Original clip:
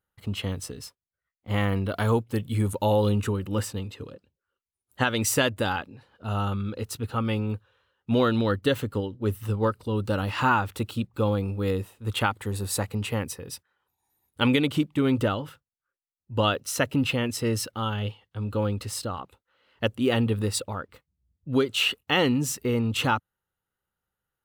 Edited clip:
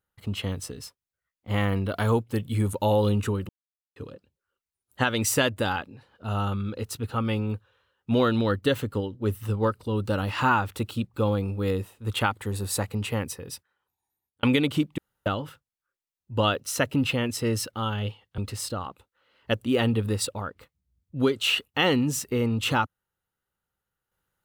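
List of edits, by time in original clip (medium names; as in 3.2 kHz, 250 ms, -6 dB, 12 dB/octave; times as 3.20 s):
3.49–3.96 s: mute
13.51–14.43 s: fade out
14.98–15.26 s: room tone
18.38–18.71 s: delete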